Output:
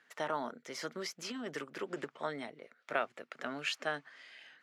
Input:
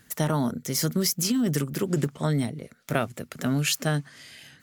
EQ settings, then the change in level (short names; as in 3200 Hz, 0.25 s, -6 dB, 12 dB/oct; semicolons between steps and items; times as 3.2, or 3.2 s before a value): BPF 450–2200 Hz; tilt +2 dB/oct; -4.5 dB